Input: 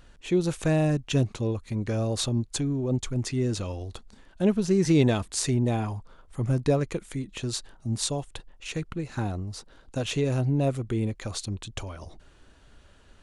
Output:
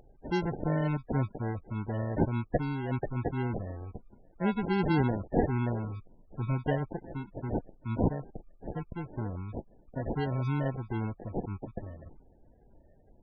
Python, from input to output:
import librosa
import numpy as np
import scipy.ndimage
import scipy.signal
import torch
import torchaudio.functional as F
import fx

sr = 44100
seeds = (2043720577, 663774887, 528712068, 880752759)

y = fx.bass_treble(x, sr, bass_db=2, treble_db=15)
y = fx.sample_hold(y, sr, seeds[0], rate_hz=1200.0, jitter_pct=0)
y = fx.spec_topn(y, sr, count=32)
y = F.gain(torch.from_numpy(y), -7.0).numpy()